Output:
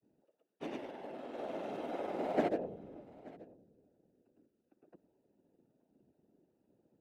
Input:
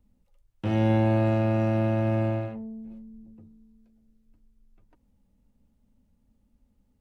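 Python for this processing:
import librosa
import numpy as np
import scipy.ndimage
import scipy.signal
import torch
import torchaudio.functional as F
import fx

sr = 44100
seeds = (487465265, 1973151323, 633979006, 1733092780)

y = fx.wiener(x, sr, points=41)
y = scipy.signal.sosfilt(scipy.signal.butter(16, 260.0, 'highpass', fs=sr, output='sos'), y)
y = fx.tilt_eq(y, sr, slope=1.5)
y = fx.over_compress(y, sr, threshold_db=-38.0, ratio=-0.5)
y = fx.granulator(y, sr, seeds[0], grain_ms=100.0, per_s=20.0, spray_ms=100.0, spread_st=0)
y = fx.whisperise(y, sr, seeds[1])
y = y + 10.0 ** (-21.5 / 20.0) * np.pad(y, (int(880 * sr / 1000.0), 0))[:len(y)]
y = F.gain(torch.from_numpy(y), 3.5).numpy()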